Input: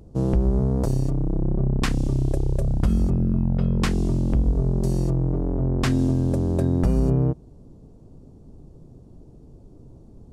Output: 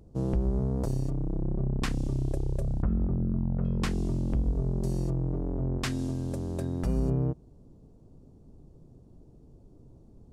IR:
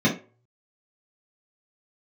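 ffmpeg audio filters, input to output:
-filter_complex "[0:a]asettb=1/sr,asplit=3[s0][s1][s2];[s0]atrim=end=2.824[s3];[s1]atrim=start=2.82:end=3.65,asetpts=PTS-STARTPTS,afade=t=in:d=0.004:c=qsin,afade=t=out:st=0.826:d=0.004:c=qsin,lowpass=f=1700:w=0.5412,lowpass=f=1700:w=1.3066[s4];[s2]atrim=start=3.646[s5];[s3][s4]acrossfade=d=0.004:c1=hsin:c2=qsin[s6];[s6][s5]acrossfade=d=0.004:c1=qsin:c2=hsin,asettb=1/sr,asplit=3[s7][s8][s9];[s7]atrim=end=5.784[s10];[s8]atrim=start=5.78:end=6.87,asetpts=PTS-STARTPTS,afade=t=in:d=0.004:c=qsin,afade=t=out:st=1.086:d=0.004:c=qsin,tiltshelf=f=1300:g=-4[s11];[s9]atrim=start=6.866[s12];[s10][s11]acrossfade=d=0.004:c1=hsin:c2=qsin[s13];[s13][s12]acrossfade=d=0.004:c1=qsin:c2=hsin,volume=0.447"

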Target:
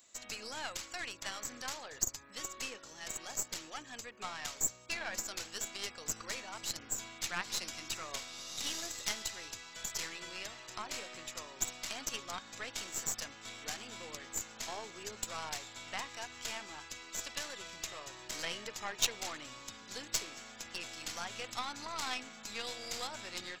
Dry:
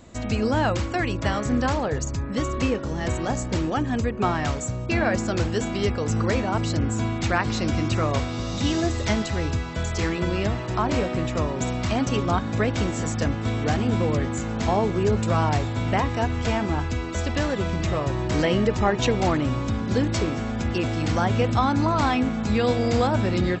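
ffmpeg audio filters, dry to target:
-af "aderivative,aeval=exprs='0.126*(cos(1*acos(clip(val(0)/0.126,-1,1)))-cos(1*PI/2))+0.0282*(cos(3*acos(clip(val(0)/0.126,-1,1)))-cos(3*PI/2))+0.00398*(cos(4*acos(clip(val(0)/0.126,-1,1)))-cos(4*PI/2))+0.00316*(cos(8*acos(clip(val(0)/0.126,-1,1)))-cos(8*PI/2))':c=same,volume=2.51"

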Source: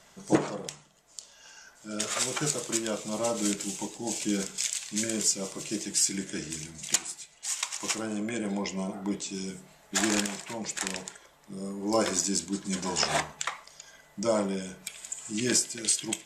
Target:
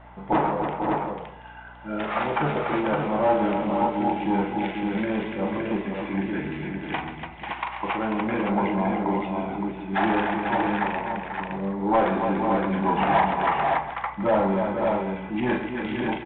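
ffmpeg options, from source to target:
-filter_complex "[0:a]lowpass=f=2400:w=0.5412,lowpass=f=2400:w=1.3066,asoftclip=type=hard:threshold=0.075,asplit=2[s0][s1];[s1]aecho=0:1:41|135|290|492|566|730:0.473|0.282|0.422|0.376|0.596|0.133[s2];[s0][s2]amix=inputs=2:normalize=0,asoftclip=type=tanh:threshold=0.0708,equalizer=f=850:w=2.7:g=12.5,aeval=exprs='val(0)+0.002*(sin(2*PI*60*n/s)+sin(2*PI*2*60*n/s)/2+sin(2*PI*3*60*n/s)/3+sin(2*PI*4*60*n/s)/4+sin(2*PI*5*60*n/s)/5)':c=same,volume=1.88" -ar 8000 -c:a pcm_alaw

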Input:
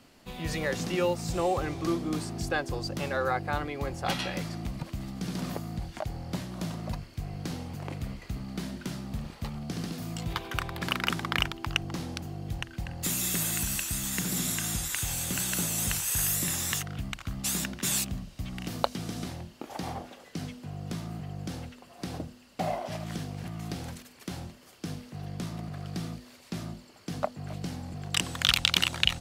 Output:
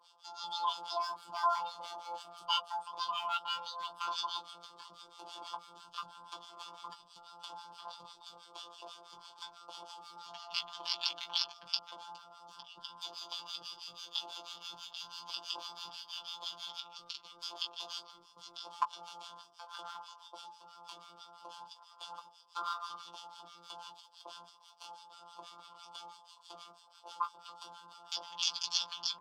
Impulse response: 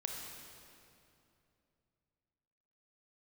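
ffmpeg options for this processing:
-filter_complex "[0:a]acrossover=split=490 5500:gain=0.224 1 0.224[s0][s1][s2];[s0][s1][s2]amix=inputs=3:normalize=0,bandreject=f=50:t=h:w=6,bandreject=f=100:t=h:w=6,bandreject=f=150:t=h:w=6,bandreject=f=200:t=h:w=6,bandreject=f=250:t=h:w=6,acrossover=split=120|2800[s3][s4][s5];[s5]acompressor=threshold=0.002:ratio=16[s6];[s3][s4][s6]amix=inputs=3:normalize=0,acrusher=bits=4:mode=log:mix=0:aa=0.000001,asplit=3[s7][s8][s9];[s7]bandpass=f=530:t=q:w=8,volume=1[s10];[s8]bandpass=f=1840:t=q:w=8,volume=0.501[s11];[s9]bandpass=f=2480:t=q:w=8,volume=0.355[s12];[s10][s11][s12]amix=inputs=3:normalize=0,asetrate=80880,aresample=44100,atempo=0.545254,acrossover=split=1100[s13][s14];[s13]aeval=exprs='val(0)*(1-1/2+1/2*cos(2*PI*6.1*n/s))':c=same[s15];[s14]aeval=exprs='val(0)*(1-1/2-1/2*cos(2*PI*6.1*n/s))':c=same[s16];[s15][s16]amix=inputs=2:normalize=0,afftfilt=real='hypot(re,im)*cos(PI*b)':imag='0':win_size=1024:overlap=0.75,asplit=2[s17][s18];[s18]adelay=16,volume=0.447[s19];[s17][s19]amix=inputs=2:normalize=0,volume=7.5"

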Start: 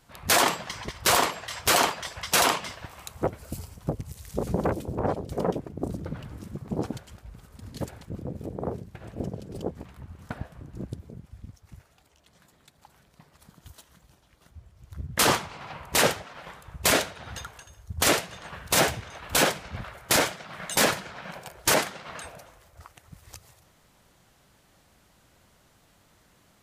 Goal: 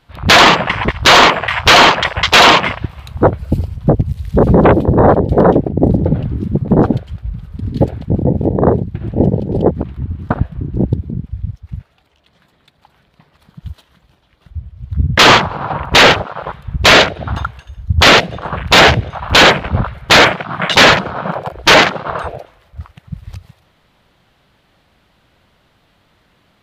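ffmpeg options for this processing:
-af "highshelf=f=5000:t=q:w=1.5:g=-10,afwtdn=0.0141,apsyclip=15,volume=0.841"

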